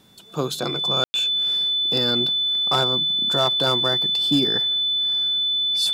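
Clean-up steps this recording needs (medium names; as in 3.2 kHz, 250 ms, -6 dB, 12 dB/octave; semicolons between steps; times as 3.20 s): clip repair -11.5 dBFS; band-stop 3.5 kHz, Q 30; room tone fill 1.04–1.14 s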